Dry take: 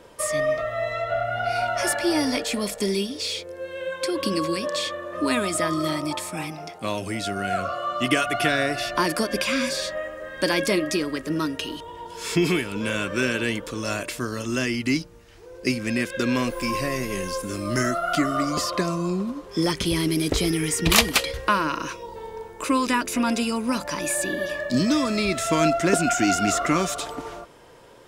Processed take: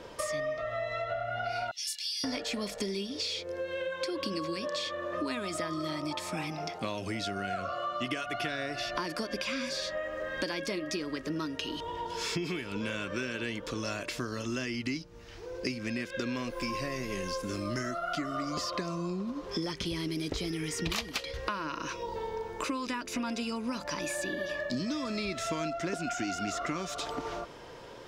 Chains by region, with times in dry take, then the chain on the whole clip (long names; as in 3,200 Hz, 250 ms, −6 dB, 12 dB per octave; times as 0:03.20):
0:01.71–0:02.24: inverse Chebyshev high-pass filter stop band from 1,300 Hz, stop band 50 dB + double-tracking delay 24 ms −9 dB
whole clip: high shelf with overshoot 7,100 Hz −7 dB, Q 1.5; downward compressor 6 to 1, threshold −34 dBFS; level +2 dB